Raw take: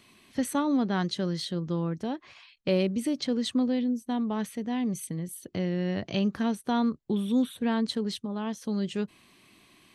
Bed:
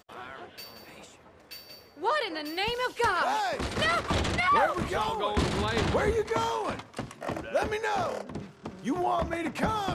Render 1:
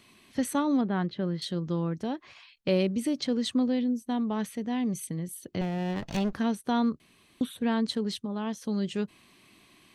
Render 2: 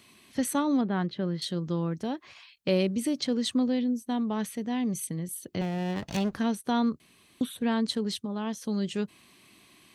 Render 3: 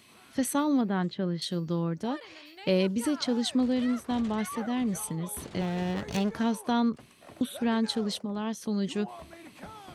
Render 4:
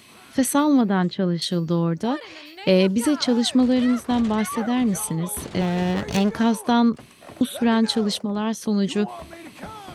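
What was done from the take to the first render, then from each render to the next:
0.81–1.42 air absorption 380 m; 5.61–6.33 minimum comb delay 1.1 ms; 7–7.41 room tone
HPF 45 Hz; high shelf 5300 Hz +5 dB
add bed -17 dB
gain +8 dB

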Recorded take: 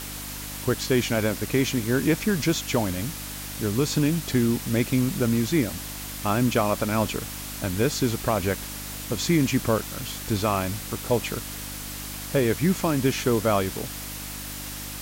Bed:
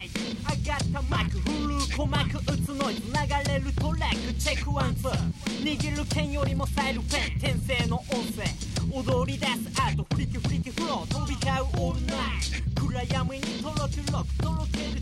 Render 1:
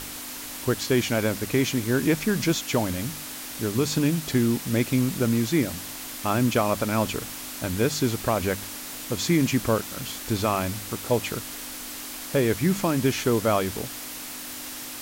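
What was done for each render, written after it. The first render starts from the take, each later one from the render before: de-hum 50 Hz, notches 4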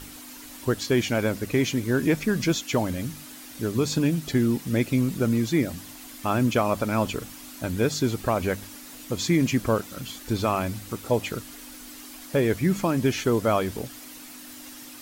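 denoiser 9 dB, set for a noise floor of -37 dBFS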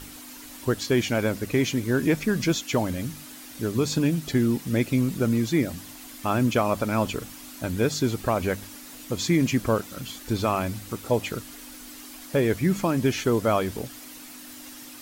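nothing audible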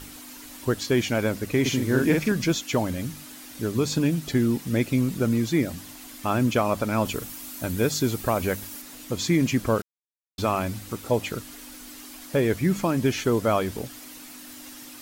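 1.61–2.32 doubler 46 ms -2.5 dB; 7.05–8.82 high shelf 9600 Hz +9.5 dB; 9.82–10.38 mute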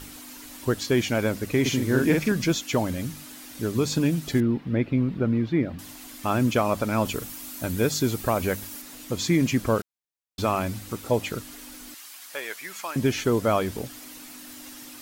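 4.4–5.79 air absorption 380 m; 11.94–12.96 HPF 1100 Hz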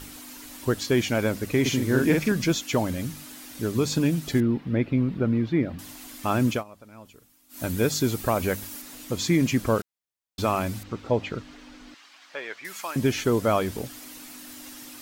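6.51–7.62 dip -22.5 dB, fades 0.13 s; 10.83–12.65 air absorption 170 m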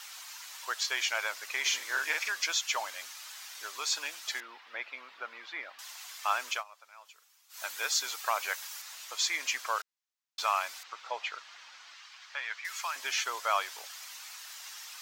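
HPF 890 Hz 24 dB/oct; resonant high shelf 7900 Hz -6 dB, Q 1.5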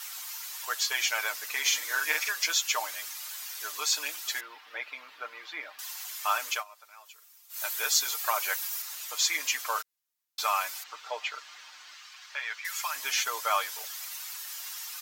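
bell 14000 Hz +12 dB 0.98 oct; comb 6.6 ms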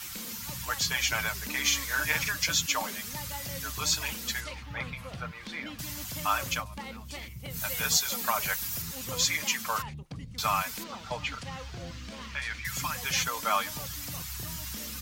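add bed -14 dB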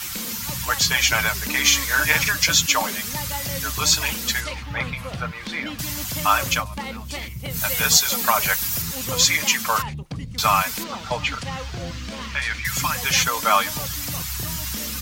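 gain +9.5 dB

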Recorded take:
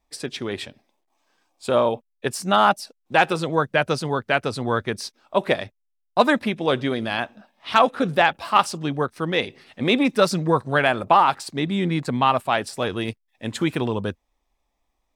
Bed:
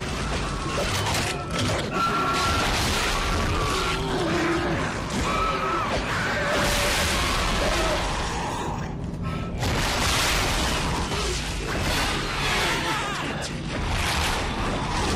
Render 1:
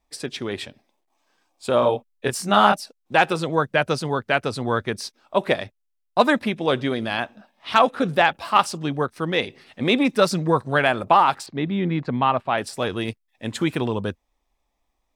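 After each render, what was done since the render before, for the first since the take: 1.8–2.79 doubler 24 ms -3.5 dB; 11.46–12.58 air absorption 250 m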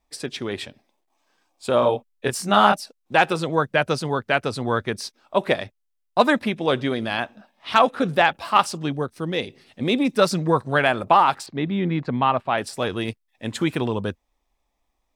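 8.92–10.17 bell 1400 Hz -7 dB 2.4 oct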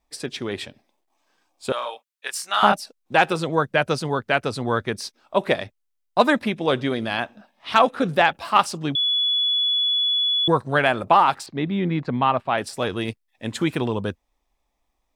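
1.72–2.63 HPF 1300 Hz; 8.95–10.48 bleep 3410 Hz -18 dBFS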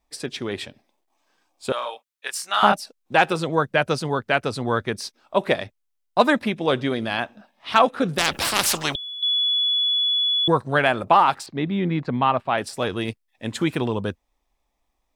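8.18–9.23 spectral compressor 4:1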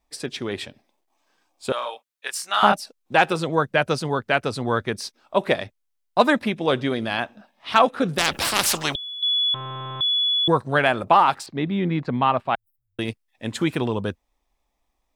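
9.54–10.01 delta modulation 16 kbps, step -30 dBFS; 12.55–12.99 inverse Chebyshev band-stop 200–6200 Hz, stop band 80 dB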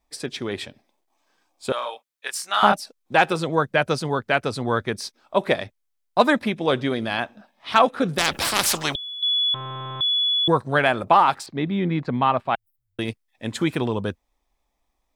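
notch 2800 Hz, Q 25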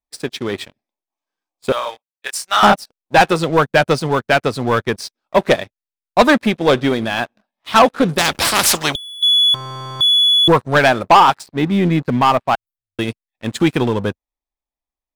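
sample leveller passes 3; upward expander 1.5:1, over -31 dBFS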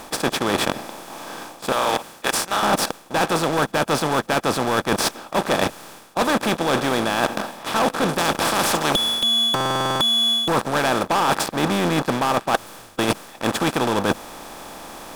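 per-bin compression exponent 0.4; reverse; compressor 12:1, threshold -17 dBFS, peak gain reduction 16 dB; reverse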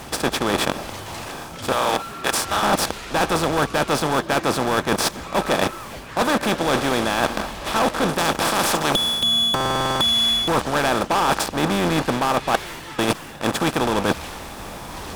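add bed -11 dB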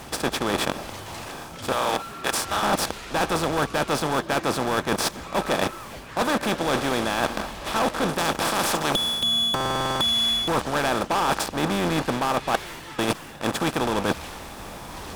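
gain -3.5 dB

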